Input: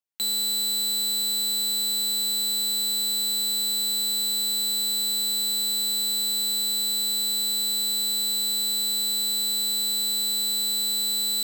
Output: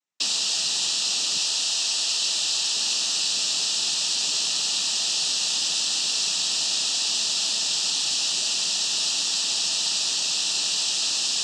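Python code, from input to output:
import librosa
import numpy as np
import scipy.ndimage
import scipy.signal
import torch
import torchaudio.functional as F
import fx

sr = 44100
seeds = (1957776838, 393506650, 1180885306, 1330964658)

y = fx.highpass(x, sr, hz=320.0, slope=6, at=(1.34, 2.72))
y = fx.rev_gated(y, sr, seeds[0], gate_ms=90, shape='falling', drr_db=3.0)
y = fx.noise_vocoder(y, sr, seeds[1], bands=12)
y = y * 10.0 ** (5.0 / 20.0)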